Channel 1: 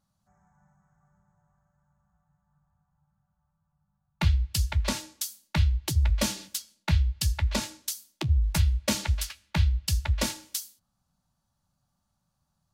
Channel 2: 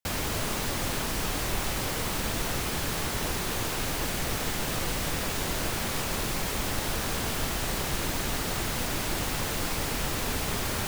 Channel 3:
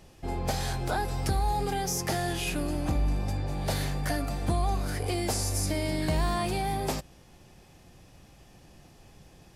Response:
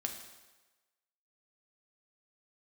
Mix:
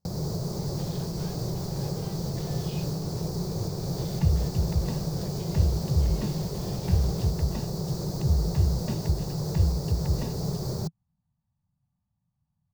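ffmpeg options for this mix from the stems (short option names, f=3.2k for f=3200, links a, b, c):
-filter_complex "[0:a]aemphasis=mode=reproduction:type=75fm,aecho=1:1:1.1:0.51,volume=-14.5dB[a];[1:a]firequalizer=gain_entry='entry(100,0);entry(160,13);entry(250,-5);entry(370,10);entry(1600,-13);entry(2900,-20);entry(4500,6);entry(9700,-12);entry(15000,-4)':delay=0.05:min_phase=1,acrossover=split=570|6300[b][c][d];[b]acompressor=threshold=-40dB:ratio=4[e];[c]acompressor=threshold=-45dB:ratio=4[f];[d]acompressor=threshold=-45dB:ratio=4[g];[e][f][g]amix=inputs=3:normalize=0,alimiter=level_in=5.5dB:limit=-24dB:level=0:latency=1:release=306,volume=-5.5dB,volume=2dB[h];[2:a]asoftclip=type=tanh:threshold=-35dB,lowpass=f=3.8k:t=q:w=3.3,adelay=300,volume=-13.5dB[i];[a][h][i]amix=inputs=3:normalize=0,equalizer=f=120:w=0.55:g=13.5"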